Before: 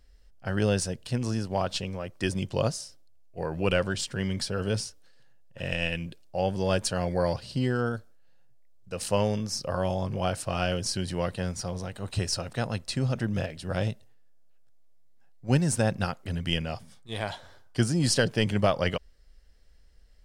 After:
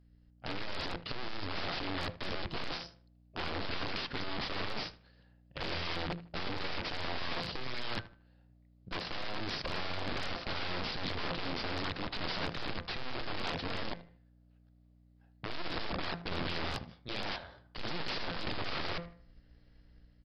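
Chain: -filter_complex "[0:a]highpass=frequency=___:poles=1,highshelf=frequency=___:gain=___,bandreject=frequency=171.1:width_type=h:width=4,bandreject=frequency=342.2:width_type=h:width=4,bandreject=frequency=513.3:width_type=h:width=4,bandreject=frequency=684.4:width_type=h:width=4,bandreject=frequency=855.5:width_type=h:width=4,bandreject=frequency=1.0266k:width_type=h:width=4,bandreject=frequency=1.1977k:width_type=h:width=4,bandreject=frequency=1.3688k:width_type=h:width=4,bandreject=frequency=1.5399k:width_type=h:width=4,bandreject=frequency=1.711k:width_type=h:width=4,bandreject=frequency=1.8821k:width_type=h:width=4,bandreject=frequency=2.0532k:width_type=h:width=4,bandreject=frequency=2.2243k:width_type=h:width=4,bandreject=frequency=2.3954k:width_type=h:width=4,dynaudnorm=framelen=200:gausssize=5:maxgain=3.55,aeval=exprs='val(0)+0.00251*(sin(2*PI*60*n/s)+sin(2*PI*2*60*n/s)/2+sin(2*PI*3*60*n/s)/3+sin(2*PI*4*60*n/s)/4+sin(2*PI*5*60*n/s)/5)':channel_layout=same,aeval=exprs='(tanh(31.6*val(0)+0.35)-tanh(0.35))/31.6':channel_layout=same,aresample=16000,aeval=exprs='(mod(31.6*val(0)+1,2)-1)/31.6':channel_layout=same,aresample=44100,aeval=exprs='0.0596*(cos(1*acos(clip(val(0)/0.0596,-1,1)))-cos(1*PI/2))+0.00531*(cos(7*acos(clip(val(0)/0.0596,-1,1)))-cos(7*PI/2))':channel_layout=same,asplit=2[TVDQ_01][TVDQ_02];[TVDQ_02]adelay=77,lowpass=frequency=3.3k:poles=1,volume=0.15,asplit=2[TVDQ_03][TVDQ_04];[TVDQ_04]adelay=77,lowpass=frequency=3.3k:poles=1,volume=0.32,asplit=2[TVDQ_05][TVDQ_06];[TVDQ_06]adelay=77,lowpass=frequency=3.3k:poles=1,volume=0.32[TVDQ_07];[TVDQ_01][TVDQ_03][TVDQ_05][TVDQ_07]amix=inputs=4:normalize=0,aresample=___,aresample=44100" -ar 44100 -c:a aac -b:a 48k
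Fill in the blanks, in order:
47, 3.1k, -6, 11025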